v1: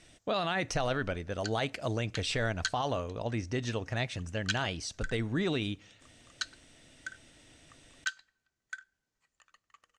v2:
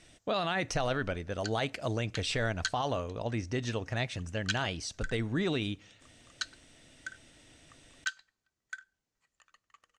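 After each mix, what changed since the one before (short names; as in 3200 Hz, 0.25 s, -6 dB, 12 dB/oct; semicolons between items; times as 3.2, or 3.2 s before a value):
background: send off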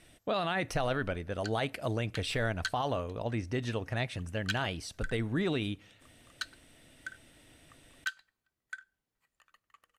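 master: remove synth low-pass 6700 Hz, resonance Q 2.2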